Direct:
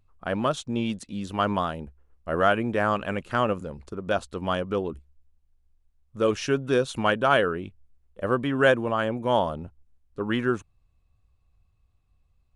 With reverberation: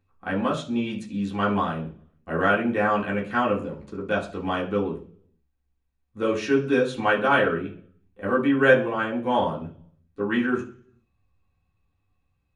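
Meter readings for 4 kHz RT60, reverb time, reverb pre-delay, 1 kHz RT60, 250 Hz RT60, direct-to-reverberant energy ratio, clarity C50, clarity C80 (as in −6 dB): 0.55 s, 0.45 s, 3 ms, 0.40 s, 0.70 s, −4.5 dB, 11.5 dB, 16.0 dB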